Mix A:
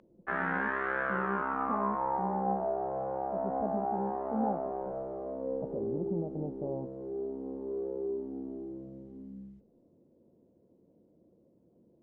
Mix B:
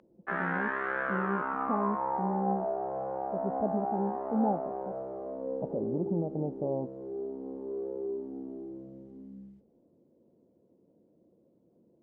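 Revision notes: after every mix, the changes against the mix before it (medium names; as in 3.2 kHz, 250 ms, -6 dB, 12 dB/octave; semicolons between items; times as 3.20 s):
speech +5.5 dB; master: add high-pass 120 Hz 6 dB/octave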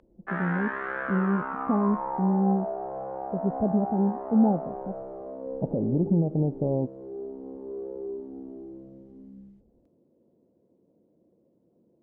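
speech: add tilt EQ -4 dB/octave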